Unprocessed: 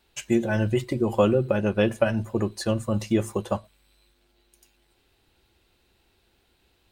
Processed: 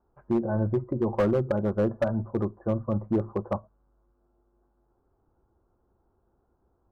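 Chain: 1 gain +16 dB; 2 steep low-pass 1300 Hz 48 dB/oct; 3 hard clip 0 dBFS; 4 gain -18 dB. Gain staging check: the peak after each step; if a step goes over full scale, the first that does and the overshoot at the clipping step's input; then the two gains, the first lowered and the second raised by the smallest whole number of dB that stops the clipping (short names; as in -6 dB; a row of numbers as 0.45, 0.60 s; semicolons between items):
+9.5, +9.0, 0.0, -18.0 dBFS; step 1, 9.0 dB; step 1 +7 dB, step 4 -9 dB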